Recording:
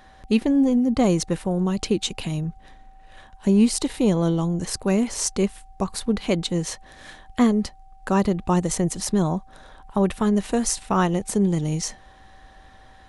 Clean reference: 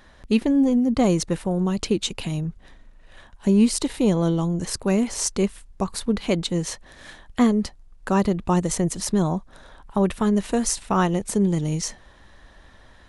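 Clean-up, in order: band-stop 770 Hz, Q 30

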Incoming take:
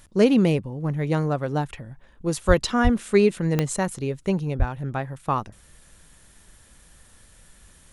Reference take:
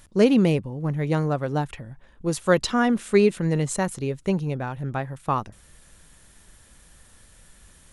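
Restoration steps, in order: de-click; de-plosive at 2.47/2.83/4.58 s

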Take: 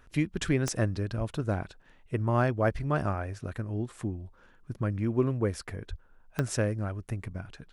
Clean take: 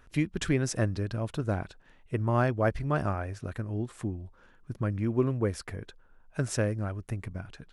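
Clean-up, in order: de-click; de-plosive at 1.17/5.89 s

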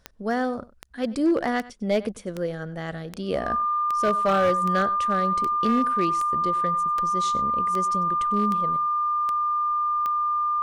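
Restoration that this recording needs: clip repair -15.5 dBFS; de-click; band-stop 1.2 kHz, Q 30; inverse comb 97 ms -19.5 dB

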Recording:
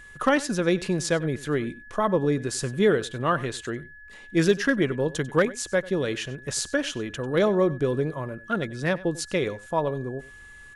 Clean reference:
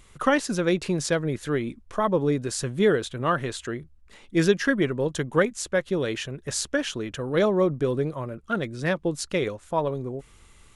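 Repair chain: clip repair -11 dBFS; band-stop 1.7 kHz, Q 30; inverse comb 95 ms -19 dB

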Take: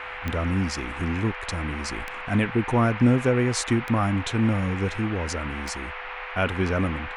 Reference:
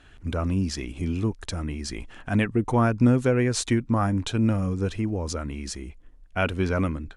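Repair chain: de-click; de-hum 408 Hz, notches 8; band-stop 500 Hz, Q 30; noise print and reduce 12 dB

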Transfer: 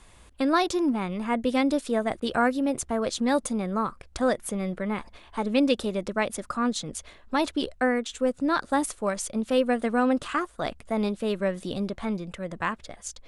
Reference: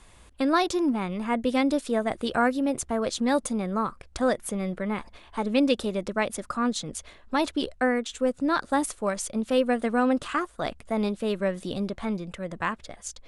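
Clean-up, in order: interpolate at 2.20 s, 19 ms

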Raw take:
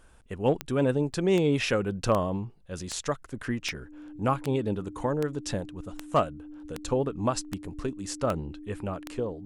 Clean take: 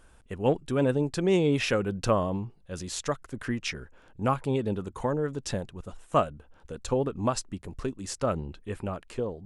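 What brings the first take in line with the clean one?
clip repair -13.5 dBFS; de-click; band-stop 300 Hz, Q 30; interpolate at 1.13 s, 7.4 ms

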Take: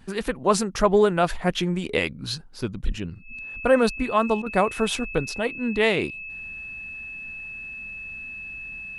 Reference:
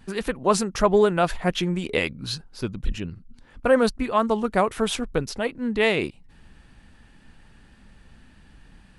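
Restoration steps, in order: band-stop 2.6 kHz, Q 30; interpolate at 4.42 s, 41 ms

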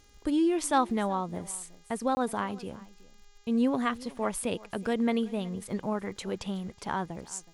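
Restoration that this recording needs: de-click; de-hum 408.1 Hz, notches 18; interpolate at 2.15 s, 20 ms; inverse comb 371 ms -21 dB

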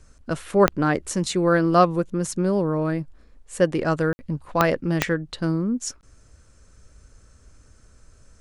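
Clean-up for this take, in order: de-click; room tone fill 4.13–4.19 s

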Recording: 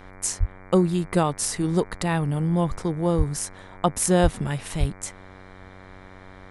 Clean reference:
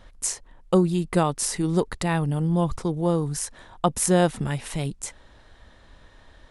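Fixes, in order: de-hum 94.2 Hz, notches 25; de-plosive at 0.39/3.17/4.22/4.79 s

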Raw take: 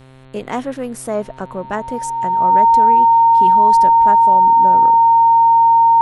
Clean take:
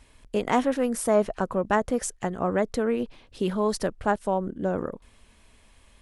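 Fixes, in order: de-hum 131.2 Hz, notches 33; band-stop 920 Hz, Q 30

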